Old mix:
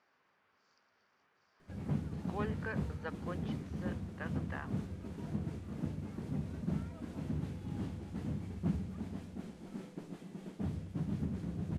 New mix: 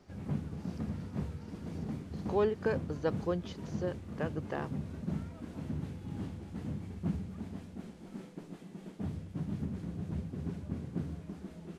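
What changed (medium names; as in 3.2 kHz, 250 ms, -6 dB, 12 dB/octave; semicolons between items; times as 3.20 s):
speech: remove band-pass filter 1.7 kHz, Q 1.3; background: entry -1.60 s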